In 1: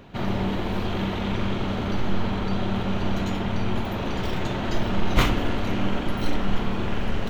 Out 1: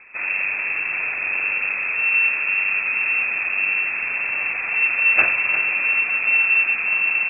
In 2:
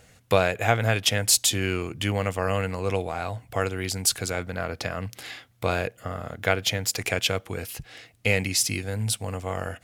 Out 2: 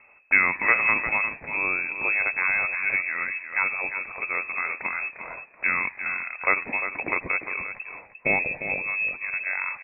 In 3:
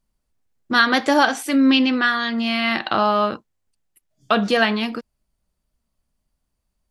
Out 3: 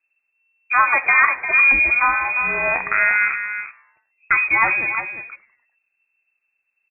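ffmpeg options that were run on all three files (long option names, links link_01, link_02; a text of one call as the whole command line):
ffmpeg -i in.wav -filter_complex "[0:a]asplit=2[link_01][link_02];[link_02]asplit=4[link_03][link_04][link_05][link_06];[link_03]adelay=99,afreqshift=140,volume=-21.5dB[link_07];[link_04]adelay=198,afreqshift=280,volume=-27.3dB[link_08];[link_05]adelay=297,afreqshift=420,volume=-33.2dB[link_09];[link_06]adelay=396,afreqshift=560,volume=-39dB[link_10];[link_07][link_08][link_09][link_10]amix=inputs=4:normalize=0[link_11];[link_01][link_11]amix=inputs=2:normalize=0,lowpass=frequency=2300:width_type=q:width=0.5098,lowpass=frequency=2300:width_type=q:width=0.6013,lowpass=frequency=2300:width_type=q:width=0.9,lowpass=frequency=2300:width_type=q:width=2.563,afreqshift=-2700,asplit=2[link_12][link_13];[link_13]aecho=0:1:351:0.335[link_14];[link_12][link_14]amix=inputs=2:normalize=0,volume=1dB" out.wav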